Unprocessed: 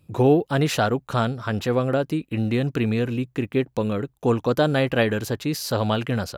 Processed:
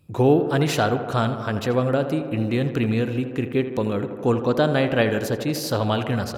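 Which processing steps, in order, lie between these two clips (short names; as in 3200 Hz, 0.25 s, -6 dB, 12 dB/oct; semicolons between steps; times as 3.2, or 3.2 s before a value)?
4.33–5.1 high shelf 10000 Hz -8.5 dB; tape echo 80 ms, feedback 88%, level -9.5 dB, low-pass 2300 Hz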